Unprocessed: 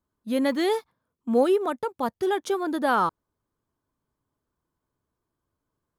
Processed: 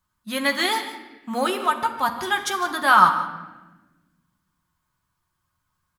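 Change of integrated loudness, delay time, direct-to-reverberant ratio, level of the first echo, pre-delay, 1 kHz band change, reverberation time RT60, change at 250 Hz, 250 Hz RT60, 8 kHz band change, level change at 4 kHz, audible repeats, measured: +4.0 dB, 152 ms, 2.5 dB, −15.5 dB, 5 ms, +8.0 dB, 1.1 s, −4.5 dB, 1.9 s, +10.5 dB, +10.5 dB, 1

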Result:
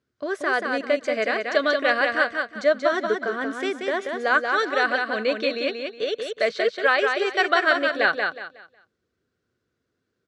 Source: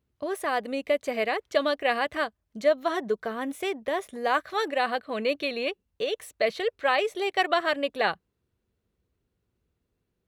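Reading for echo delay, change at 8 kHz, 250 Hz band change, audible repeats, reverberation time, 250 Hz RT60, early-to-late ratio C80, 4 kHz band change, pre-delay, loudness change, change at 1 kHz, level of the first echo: 183 ms, can't be measured, +3.5 dB, 3, no reverb audible, no reverb audible, no reverb audible, +3.5 dB, no reverb audible, +5.0 dB, +3.0 dB, −4.5 dB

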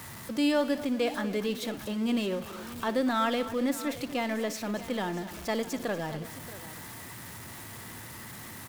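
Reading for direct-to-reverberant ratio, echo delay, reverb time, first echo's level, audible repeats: no reverb audible, 59 ms, no reverb audible, −15.5 dB, 3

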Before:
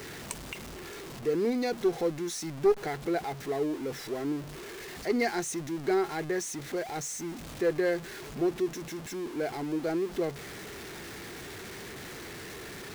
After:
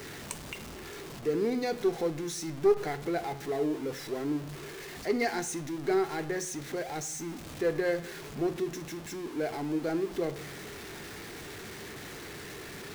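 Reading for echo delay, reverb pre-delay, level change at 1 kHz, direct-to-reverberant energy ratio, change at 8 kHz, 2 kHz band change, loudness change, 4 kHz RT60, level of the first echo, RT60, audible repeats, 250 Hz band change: no echo audible, 7 ms, −0.5 dB, 10.0 dB, −0.5 dB, −0.5 dB, −0.5 dB, 0.60 s, no echo audible, 0.70 s, no echo audible, −1.0 dB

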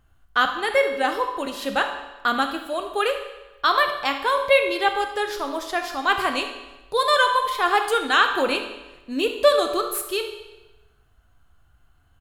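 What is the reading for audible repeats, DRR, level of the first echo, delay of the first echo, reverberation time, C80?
1, 5.0 dB, −14.5 dB, 72 ms, 1.1 s, 9.5 dB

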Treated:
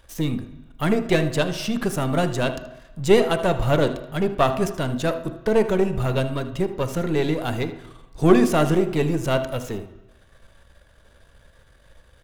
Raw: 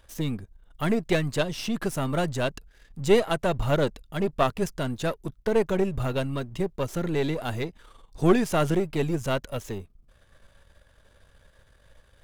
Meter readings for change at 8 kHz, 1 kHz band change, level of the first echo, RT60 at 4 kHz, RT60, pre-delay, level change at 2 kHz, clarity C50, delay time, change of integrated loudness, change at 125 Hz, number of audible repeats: +3.5 dB, +4.5 dB, −15.0 dB, 1.1 s, 1.1 s, 3 ms, +4.0 dB, 10.5 dB, 78 ms, +4.5 dB, +4.5 dB, 1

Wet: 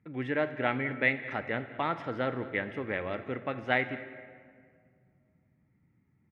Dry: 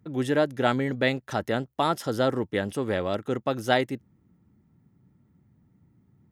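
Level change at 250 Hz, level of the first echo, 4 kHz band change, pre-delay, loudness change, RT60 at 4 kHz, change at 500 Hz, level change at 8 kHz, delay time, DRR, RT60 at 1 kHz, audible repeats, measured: −7.5 dB, −20.0 dB, −10.5 dB, 4 ms, −5.0 dB, 1.1 s, −7.5 dB, below −25 dB, 207 ms, 9.5 dB, 1.8 s, 1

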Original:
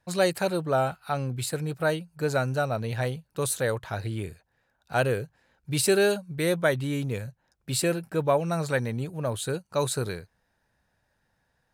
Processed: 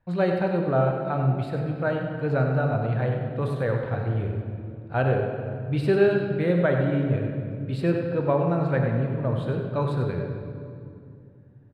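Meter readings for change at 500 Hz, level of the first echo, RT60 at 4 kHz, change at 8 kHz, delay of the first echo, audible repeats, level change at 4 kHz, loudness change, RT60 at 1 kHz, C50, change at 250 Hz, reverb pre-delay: +2.0 dB, −8.0 dB, 1.7 s, below −25 dB, 97 ms, 1, −10.5 dB, +2.5 dB, 2.2 s, 2.5 dB, +5.0 dB, 3 ms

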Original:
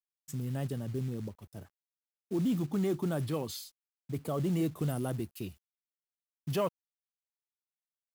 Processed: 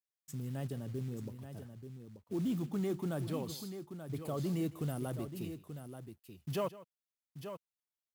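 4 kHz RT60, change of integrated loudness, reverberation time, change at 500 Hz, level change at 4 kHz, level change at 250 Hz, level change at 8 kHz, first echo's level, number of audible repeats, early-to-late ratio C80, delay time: no reverb audible, −5.0 dB, no reverb audible, −4.0 dB, −4.0 dB, −4.0 dB, −4.0 dB, −18.0 dB, 2, no reverb audible, 156 ms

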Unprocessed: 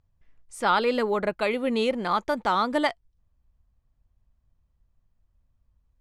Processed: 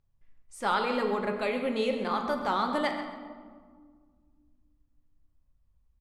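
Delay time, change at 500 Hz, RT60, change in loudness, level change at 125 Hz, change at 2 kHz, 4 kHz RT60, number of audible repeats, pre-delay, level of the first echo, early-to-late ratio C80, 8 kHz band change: 133 ms, −4.0 dB, 1.8 s, −4.5 dB, −3.0 dB, −4.5 dB, 0.95 s, 1, 4 ms, −12.5 dB, 7.0 dB, can't be measured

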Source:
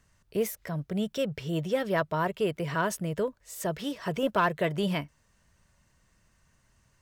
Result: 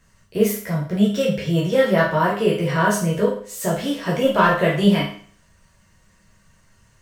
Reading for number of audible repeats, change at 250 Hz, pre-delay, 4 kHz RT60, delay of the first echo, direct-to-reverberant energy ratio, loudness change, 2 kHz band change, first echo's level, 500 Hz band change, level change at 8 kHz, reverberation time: no echo audible, +12.0 dB, 10 ms, 0.50 s, no echo audible, −5.0 dB, +10.5 dB, +10.5 dB, no echo audible, +10.0 dB, +9.5 dB, 0.50 s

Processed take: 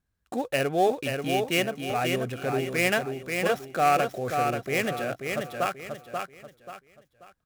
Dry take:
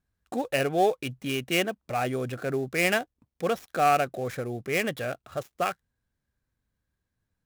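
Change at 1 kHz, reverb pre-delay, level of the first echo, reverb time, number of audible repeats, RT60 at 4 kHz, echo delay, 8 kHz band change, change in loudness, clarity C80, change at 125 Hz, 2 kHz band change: +1.5 dB, no reverb audible, −5.0 dB, no reverb audible, 4, no reverb audible, 535 ms, +1.5 dB, +1.0 dB, no reverb audible, +1.0 dB, +1.5 dB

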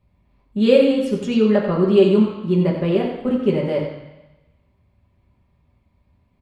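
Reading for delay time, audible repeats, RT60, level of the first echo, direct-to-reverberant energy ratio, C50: 90 ms, 1, 1.0 s, −8.5 dB, −3.5 dB, 4.0 dB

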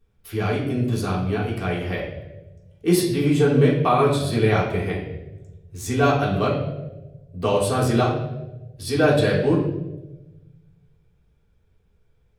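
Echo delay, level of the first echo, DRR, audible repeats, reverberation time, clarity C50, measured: no echo audible, no echo audible, −6.0 dB, no echo audible, 1.1 s, 4.5 dB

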